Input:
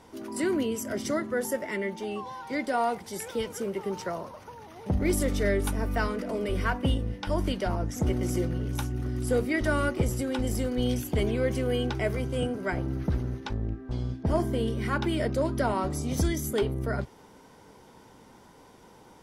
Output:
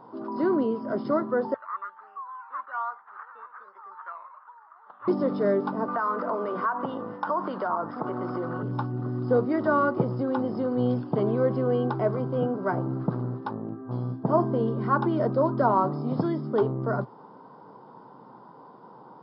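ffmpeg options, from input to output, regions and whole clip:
-filter_complex "[0:a]asettb=1/sr,asplit=3[a][b][c];[a]atrim=end=1.544[d];[b]atrim=start=1.54:end=5.08,asetpts=PTS-STARTPTS,afade=t=in:d=0.004:c=qsin,afade=t=out:st=3.536:d=0.004:c=qsin,acrusher=samples=11:mix=1:aa=0.000001:lfo=1:lforange=6.6:lforate=1.2,asuperpass=centerf=1500:order=4:qfactor=1.9[e];[c]atrim=start=5.076[f];[d][e]acrossfade=d=0.004:c1=hsin:c2=qsin[g];[g][f]acrossfade=d=0.004:c1=qsin:c2=hsin,asettb=1/sr,asplit=3[h][i][j];[h]atrim=end=5.884[k];[i]atrim=start=5.88:end=8.63,asetpts=PTS-STARTPTS,afade=t=in:d=0.004:c=qsin,afade=t=out:st=2.746:d=0.004:c=qsin,highpass=f=270:p=1,equalizer=f=1.3k:t=o:w=1.6:g=12,acompressor=threshold=-29dB:ratio=5:attack=3.2:release=140:knee=1:detection=peak[l];[j]atrim=start=8.626[m];[k][l]acrossfade=d=0.004:c1=hsin:c2=qsin[n];[n][m]acrossfade=d=0.004:c1=qsin:c2=hsin,afftfilt=real='re*between(b*sr/4096,110,5300)':imag='im*between(b*sr/4096,110,5300)':win_size=4096:overlap=0.75,highshelf=f=1.6k:t=q:w=3:g=-12,volume=2.5dB"

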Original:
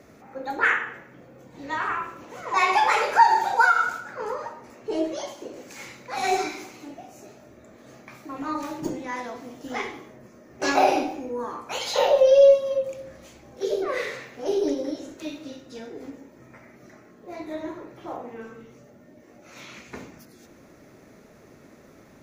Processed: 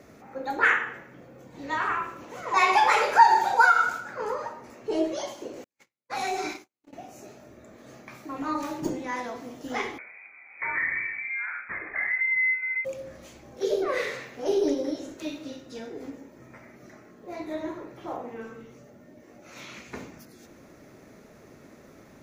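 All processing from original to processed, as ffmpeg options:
-filter_complex "[0:a]asettb=1/sr,asplit=3[a][b][c];[a]atrim=end=5.644[d];[b]atrim=start=5.64:end=6.93,asetpts=PTS-STARTPTS,afade=t=in:d=0.004:c=qsin,afade=t=out:st=1.286:d=0.004:c=qsin,agate=range=-52dB:threshold=-37dB:ratio=16:release=100:detection=peak,acompressor=threshold=-26dB:ratio=4:attack=3.2:release=140:knee=1:detection=peak[e];[c]atrim=start=6.926[f];[d][e]acrossfade=d=0.004:c1=hsin:c2=qsin[g];[g][f]acrossfade=d=0.004:c1=qsin:c2=hsin,asettb=1/sr,asplit=3[h][i][j];[h]atrim=end=9.984[k];[i]atrim=start=9.98:end=12.85,asetpts=PTS-STARTPTS,afade=t=in:d=0.004:c=qsin,afade=t=out:st=2.866:d=0.004:c=qsin,acompressor=threshold=-28dB:ratio=2.5:attack=3.2:release=140:knee=1:detection=peak,lowpass=f=2.2k:t=q:w=0.5098,lowpass=f=2.2k:t=q:w=0.6013,lowpass=f=2.2k:t=q:w=0.9,lowpass=f=2.2k:t=q:w=2.563,afreqshift=-2600[l];[j]atrim=start=12.846[m];[k][l]acrossfade=d=0.004:c1=hsin:c2=qsin[n];[n][m]acrossfade=d=0.004:c1=qsin:c2=hsin"

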